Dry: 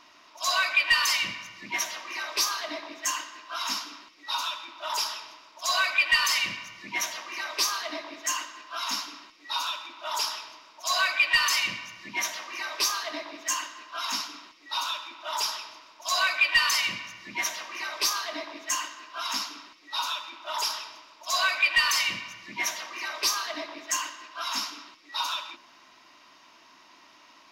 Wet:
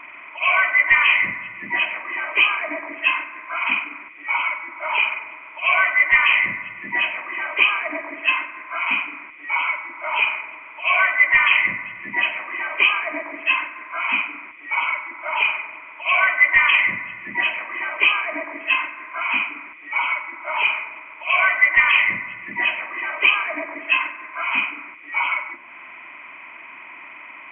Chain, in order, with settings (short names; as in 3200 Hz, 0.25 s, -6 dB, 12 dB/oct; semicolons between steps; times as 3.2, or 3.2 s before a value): nonlinear frequency compression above 1900 Hz 4:1; mismatched tape noise reduction encoder only; gain +6.5 dB